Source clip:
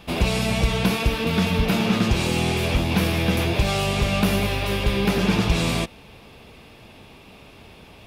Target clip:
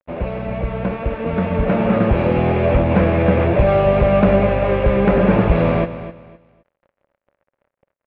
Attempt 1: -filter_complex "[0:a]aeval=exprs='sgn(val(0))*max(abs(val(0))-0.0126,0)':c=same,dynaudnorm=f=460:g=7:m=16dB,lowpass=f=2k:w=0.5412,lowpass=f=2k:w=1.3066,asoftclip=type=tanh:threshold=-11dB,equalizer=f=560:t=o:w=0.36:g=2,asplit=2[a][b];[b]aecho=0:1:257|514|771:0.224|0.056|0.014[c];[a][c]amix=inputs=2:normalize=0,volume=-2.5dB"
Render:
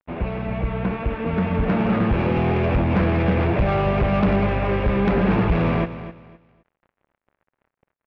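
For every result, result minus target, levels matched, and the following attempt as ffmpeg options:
soft clip: distortion +15 dB; 500 Hz band -3.0 dB
-filter_complex "[0:a]aeval=exprs='sgn(val(0))*max(abs(val(0))-0.0126,0)':c=same,dynaudnorm=f=460:g=7:m=16dB,lowpass=f=2k:w=0.5412,lowpass=f=2k:w=1.3066,asoftclip=type=tanh:threshold=-0.5dB,equalizer=f=560:t=o:w=0.36:g=2,asplit=2[a][b];[b]aecho=0:1:257|514|771:0.224|0.056|0.014[c];[a][c]amix=inputs=2:normalize=0,volume=-2.5dB"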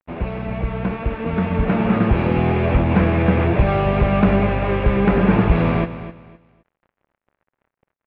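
500 Hz band -3.5 dB
-filter_complex "[0:a]aeval=exprs='sgn(val(0))*max(abs(val(0))-0.0126,0)':c=same,dynaudnorm=f=460:g=7:m=16dB,lowpass=f=2k:w=0.5412,lowpass=f=2k:w=1.3066,asoftclip=type=tanh:threshold=-0.5dB,equalizer=f=560:t=o:w=0.36:g=12.5,asplit=2[a][b];[b]aecho=0:1:257|514|771:0.224|0.056|0.014[c];[a][c]amix=inputs=2:normalize=0,volume=-2.5dB"

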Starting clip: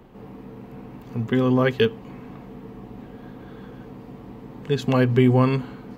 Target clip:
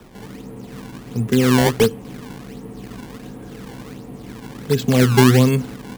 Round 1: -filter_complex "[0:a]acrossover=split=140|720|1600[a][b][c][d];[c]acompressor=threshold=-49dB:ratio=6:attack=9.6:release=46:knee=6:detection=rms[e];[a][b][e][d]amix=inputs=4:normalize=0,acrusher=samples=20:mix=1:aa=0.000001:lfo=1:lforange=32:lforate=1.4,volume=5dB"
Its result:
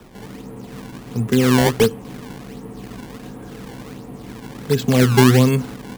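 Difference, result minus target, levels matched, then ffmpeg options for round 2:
compressor: peak gain reduction -9 dB
-filter_complex "[0:a]acrossover=split=140|720|1600[a][b][c][d];[c]acompressor=threshold=-59.5dB:ratio=6:attack=9.6:release=46:knee=6:detection=rms[e];[a][b][e][d]amix=inputs=4:normalize=0,acrusher=samples=20:mix=1:aa=0.000001:lfo=1:lforange=32:lforate=1.4,volume=5dB"

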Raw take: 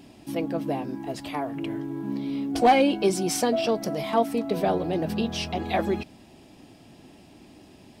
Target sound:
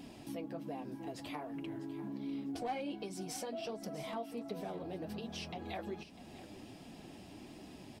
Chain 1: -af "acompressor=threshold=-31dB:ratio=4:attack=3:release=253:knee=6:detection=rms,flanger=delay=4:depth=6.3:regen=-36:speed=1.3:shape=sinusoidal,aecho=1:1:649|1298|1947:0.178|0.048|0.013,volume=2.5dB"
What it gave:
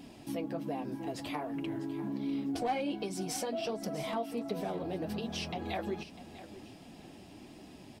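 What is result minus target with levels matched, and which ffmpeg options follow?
compressor: peak gain reduction -6 dB
-af "acompressor=threshold=-39dB:ratio=4:attack=3:release=253:knee=6:detection=rms,flanger=delay=4:depth=6.3:regen=-36:speed=1.3:shape=sinusoidal,aecho=1:1:649|1298|1947:0.178|0.048|0.013,volume=2.5dB"

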